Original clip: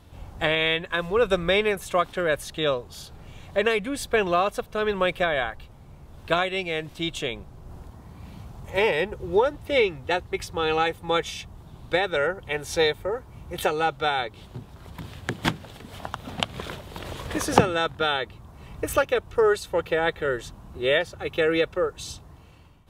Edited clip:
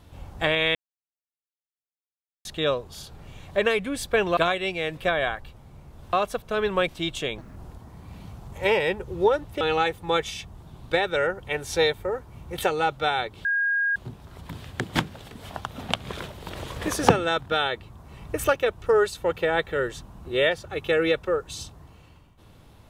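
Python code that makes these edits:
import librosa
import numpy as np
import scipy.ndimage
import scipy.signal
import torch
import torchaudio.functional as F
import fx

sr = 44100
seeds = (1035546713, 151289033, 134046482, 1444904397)

y = fx.edit(x, sr, fx.silence(start_s=0.75, length_s=1.7),
    fx.swap(start_s=4.37, length_s=0.75, other_s=6.28, other_length_s=0.6),
    fx.speed_span(start_s=7.38, length_s=0.3, speed=1.68),
    fx.cut(start_s=9.73, length_s=0.88),
    fx.insert_tone(at_s=14.45, length_s=0.51, hz=1630.0, db=-20.5), tone=tone)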